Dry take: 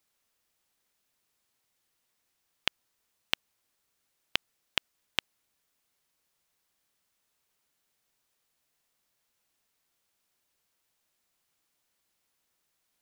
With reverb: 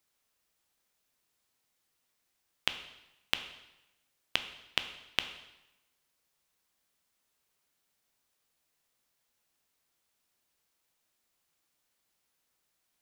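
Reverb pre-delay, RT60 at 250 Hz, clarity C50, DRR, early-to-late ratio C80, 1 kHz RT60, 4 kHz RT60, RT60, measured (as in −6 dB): 6 ms, 0.95 s, 11.0 dB, 8.0 dB, 12.5 dB, 0.95 s, 0.90 s, 0.95 s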